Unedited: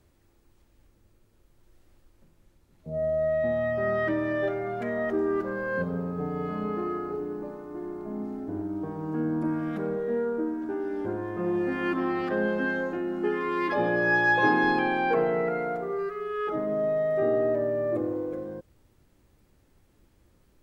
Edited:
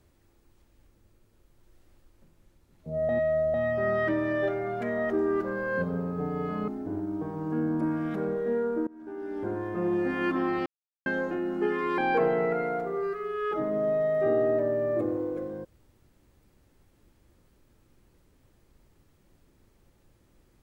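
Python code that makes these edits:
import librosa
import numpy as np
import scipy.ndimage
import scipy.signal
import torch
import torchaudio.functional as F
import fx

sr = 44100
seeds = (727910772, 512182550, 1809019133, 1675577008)

y = fx.edit(x, sr, fx.reverse_span(start_s=3.09, length_s=0.45),
    fx.cut(start_s=6.68, length_s=1.62),
    fx.fade_in_from(start_s=10.49, length_s=0.69, floor_db=-23.5),
    fx.silence(start_s=12.28, length_s=0.4),
    fx.cut(start_s=13.6, length_s=1.34), tone=tone)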